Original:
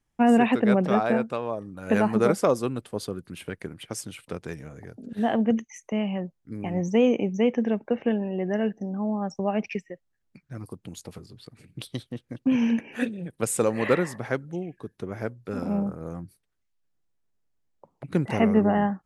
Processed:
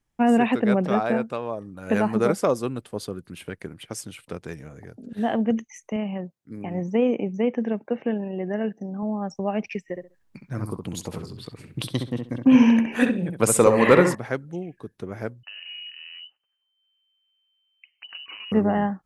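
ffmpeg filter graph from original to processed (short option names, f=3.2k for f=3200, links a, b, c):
-filter_complex "[0:a]asettb=1/sr,asplit=3[a][b][c];[a]atrim=end=5.964[d];[b]atrim=start=5.96:end=9.03,asetpts=PTS-STARTPTS,afade=t=in:d=0.004:c=qsin,afade=t=out:st=3.066:d=0.004:c=qsin,highpass=110,acrossover=split=2900[e][f];[f]acompressor=threshold=-59dB:ratio=4:attack=1:release=60[g];[e][g]amix=inputs=2:normalize=0,tremolo=f=29:d=0.182[h];[c]atrim=start=9.026[i];[d][h]acrossfade=d=0.004:c1=hsin:c2=qsin[j];[j][i]acrossfade=d=0.004:c1=qsin:c2=hsin,asettb=1/sr,asplit=3[k][l][m];[k]atrim=end=9.884[n];[l]atrim=start=9.88:end=14.15,asetpts=PTS-STARTPTS,afade=t=in:d=0.004:c=qsin,afade=t=out:st=4.266:d=0.004:c=qsin,equalizer=f=1k:t=o:w=0.38:g=6,acontrast=77,asplit=2[o][p];[p]adelay=66,lowpass=f=2k:p=1,volume=-5dB,asplit=2[q][r];[r]adelay=66,lowpass=f=2k:p=1,volume=0.2,asplit=2[s][t];[t]adelay=66,lowpass=f=2k:p=1,volume=0.2[u];[o][q][s][u]amix=inputs=4:normalize=0,atrim=end_sample=188307[v];[m]atrim=start=14.146[w];[n][v]acrossfade=d=0.004:c1=hsin:c2=qsin[x];[x][w]acrossfade=d=0.004:c1=qsin:c2=hsin,asettb=1/sr,asplit=3[y][z][aa];[y]atrim=end=15.434[ab];[z]atrim=start=15.43:end=18.52,asetpts=PTS-STARTPTS,afade=t=in:d=0.004:c=qsin,afade=t=out:st=3.086:d=0.004:c=qsin,acompressor=threshold=-36dB:ratio=8:attack=3.2:release=140:knee=1:detection=peak,lowpass=f=2.6k:t=q:w=0.5098,lowpass=f=2.6k:t=q:w=0.6013,lowpass=f=2.6k:t=q:w=0.9,lowpass=f=2.6k:t=q:w=2.563,afreqshift=-3100[ac];[aa]atrim=start=18.516[ad];[ab][ac]acrossfade=d=0.004:c1=hsin:c2=qsin[ae];[ae][ad]acrossfade=d=0.004:c1=qsin:c2=hsin"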